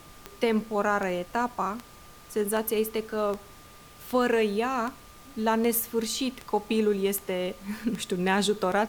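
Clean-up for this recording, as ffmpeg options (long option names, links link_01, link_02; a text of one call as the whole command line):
ffmpeg -i in.wav -af "adeclick=threshold=4,bandreject=frequency=1200:width=30,afftdn=noise_reduction=23:noise_floor=-49" out.wav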